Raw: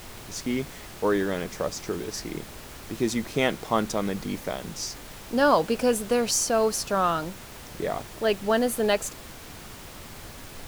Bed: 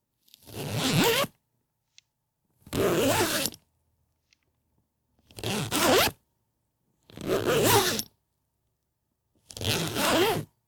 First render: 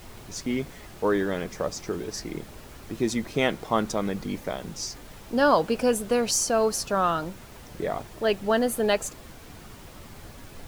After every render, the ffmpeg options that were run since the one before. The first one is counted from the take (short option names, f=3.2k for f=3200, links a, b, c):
-af "afftdn=nr=6:nf=-43"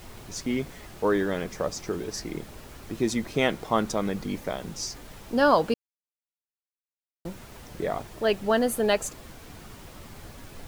-filter_complex "[0:a]asplit=3[a][b][c];[a]atrim=end=5.74,asetpts=PTS-STARTPTS,afade=t=out:st=5.736:d=0.004:c=hsin[d];[b]atrim=start=5.74:end=7.25,asetpts=PTS-STARTPTS,volume=0[e];[c]atrim=start=7.25,asetpts=PTS-STARTPTS,afade=t=in:d=0.004:c=hsin[f];[d][e][f]concat=n=3:v=0:a=1"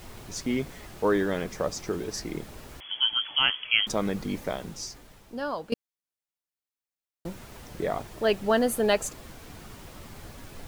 -filter_complex "[0:a]asettb=1/sr,asplit=3[a][b][c];[a]atrim=end=2.804[d];[b]atrim=start=2.8:end=3.87,asetpts=PTS-STARTPTS,afade=t=in:d=0.004:c=qsin,afade=t=out:st=1.066:d=0.004:c=qsin,lowpass=f=2.9k:t=q:w=0.5098,lowpass=f=2.9k:t=q:w=0.6013,lowpass=f=2.9k:t=q:w=0.9,lowpass=f=2.9k:t=q:w=2.563,afreqshift=-3400[e];[c]atrim=start=3.866[f];[d][e]acrossfade=d=0.004:c1=hsin:c2=qsin[g];[g][f]acrossfade=d=0.004:c1=qsin:c2=hsin,asplit=2[h][i];[h]atrim=end=5.72,asetpts=PTS-STARTPTS,afade=t=out:st=4.52:d=1.2:c=qua:silence=0.211349[j];[i]atrim=start=5.72,asetpts=PTS-STARTPTS,afade=t=in:d=0.004:c=hsin:silence=0.211349[k];[j][k]concat=n=2:v=0:a=1"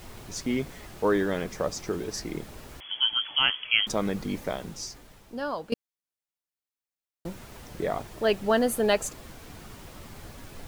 -af anull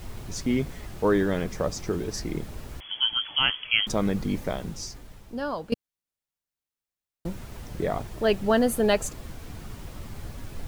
-af "lowshelf=f=180:g=9.5"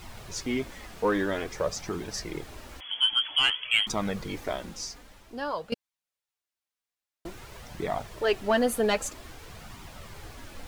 -filter_complex "[0:a]asplit=2[a][b];[b]highpass=f=720:p=1,volume=10dB,asoftclip=type=tanh:threshold=-8dB[c];[a][c]amix=inputs=2:normalize=0,lowpass=f=7.2k:p=1,volume=-6dB,flanger=delay=0.8:depth=3.6:regen=-35:speed=0.51:shape=triangular"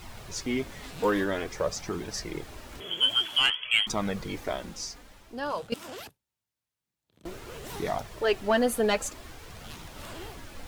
-filter_complex "[1:a]volume=-20.5dB[a];[0:a][a]amix=inputs=2:normalize=0"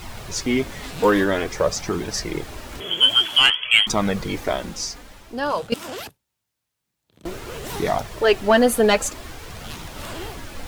-af "volume=8.5dB"